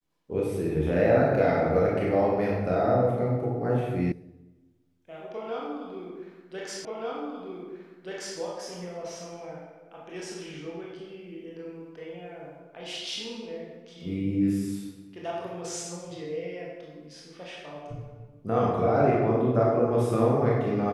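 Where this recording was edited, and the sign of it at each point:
4.12 s: sound stops dead
6.85 s: repeat of the last 1.53 s

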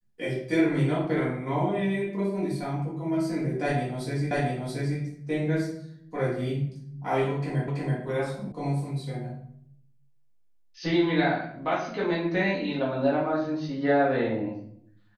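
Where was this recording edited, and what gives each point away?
4.31 s: repeat of the last 0.68 s
7.68 s: repeat of the last 0.33 s
8.52 s: sound stops dead

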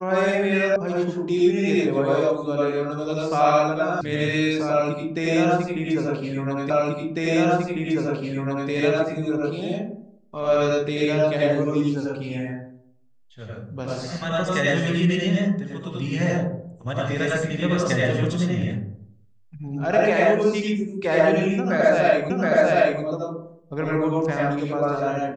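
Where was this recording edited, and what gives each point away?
0.76 s: sound stops dead
4.01 s: sound stops dead
6.70 s: repeat of the last 2 s
22.30 s: repeat of the last 0.72 s

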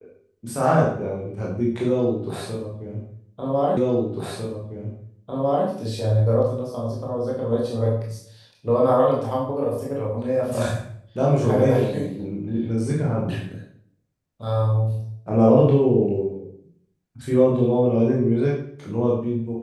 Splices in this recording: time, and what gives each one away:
3.77 s: repeat of the last 1.9 s

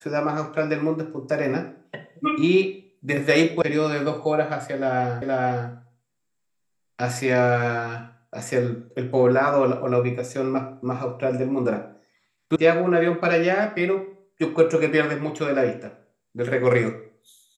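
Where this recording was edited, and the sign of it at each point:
3.62 s: sound stops dead
5.22 s: repeat of the last 0.47 s
12.56 s: sound stops dead

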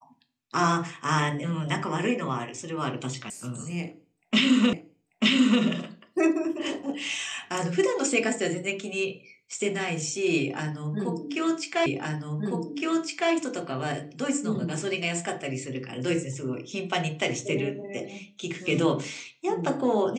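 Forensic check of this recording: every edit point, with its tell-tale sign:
3.30 s: sound stops dead
4.73 s: repeat of the last 0.89 s
11.86 s: repeat of the last 1.46 s

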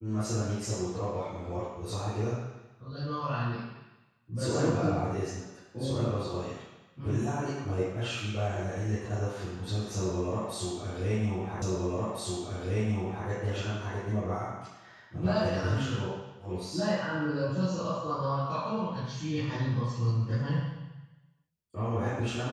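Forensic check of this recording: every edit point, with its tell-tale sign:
11.62 s: repeat of the last 1.66 s

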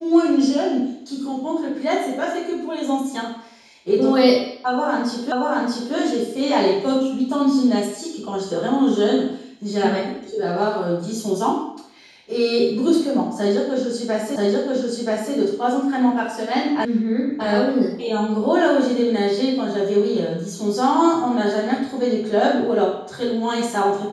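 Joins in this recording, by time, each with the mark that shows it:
5.32 s: repeat of the last 0.63 s
14.36 s: repeat of the last 0.98 s
16.85 s: sound stops dead

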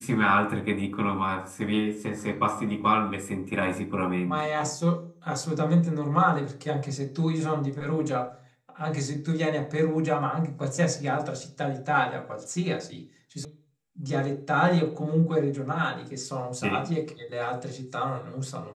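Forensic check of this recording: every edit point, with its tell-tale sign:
13.45 s: sound stops dead

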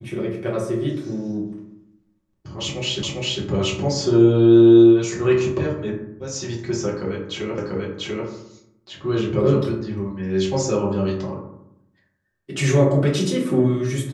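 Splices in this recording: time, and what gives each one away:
3.03 s: repeat of the last 0.4 s
7.58 s: repeat of the last 0.69 s

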